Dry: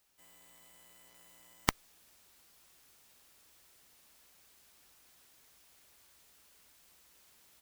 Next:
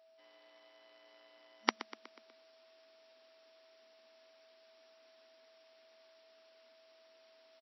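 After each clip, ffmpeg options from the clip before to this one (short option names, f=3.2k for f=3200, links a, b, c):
-filter_complex "[0:a]asplit=6[a][b][c][d][e][f];[b]adelay=122,afreqshift=36,volume=-15dB[g];[c]adelay=244,afreqshift=72,volume=-20.7dB[h];[d]adelay=366,afreqshift=108,volume=-26.4dB[i];[e]adelay=488,afreqshift=144,volume=-32dB[j];[f]adelay=610,afreqshift=180,volume=-37.7dB[k];[a][g][h][i][j][k]amix=inputs=6:normalize=0,afftfilt=real='re*between(b*sr/4096,220,5700)':imag='im*between(b*sr/4096,220,5700)':win_size=4096:overlap=0.75,aeval=exprs='val(0)+0.000708*sin(2*PI*650*n/s)':c=same"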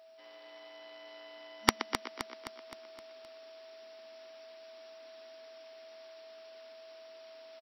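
-af "aeval=exprs='0.299*(abs(mod(val(0)/0.299+3,4)-2)-1)':c=same,aecho=1:1:260|520|780|1040|1300|1560:0.355|0.185|0.0959|0.0499|0.0259|0.0135,volume=8.5dB"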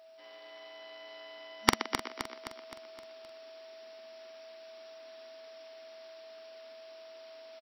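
-filter_complex "[0:a]asplit=2[a][b];[b]adelay=45,volume=-9dB[c];[a][c]amix=inputs=2:normalize=0,volume=1dB"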